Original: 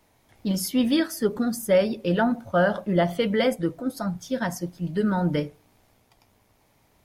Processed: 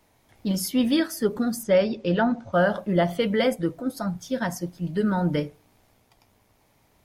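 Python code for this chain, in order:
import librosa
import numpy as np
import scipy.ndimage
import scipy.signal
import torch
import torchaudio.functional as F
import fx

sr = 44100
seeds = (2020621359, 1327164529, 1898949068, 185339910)

y = fx.lowpass(x, sr, hz=6900.0, slope=24, at=(1.63, 2.53))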